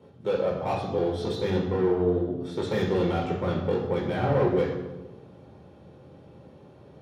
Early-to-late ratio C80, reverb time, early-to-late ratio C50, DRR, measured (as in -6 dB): 6.5 dB, 1.1 s, 4.5 dB, -2.0 dB